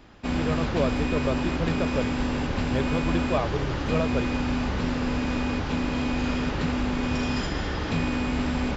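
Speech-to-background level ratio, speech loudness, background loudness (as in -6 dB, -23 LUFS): -3.5 dB, -31.0 LUFS, -27.5 LUFS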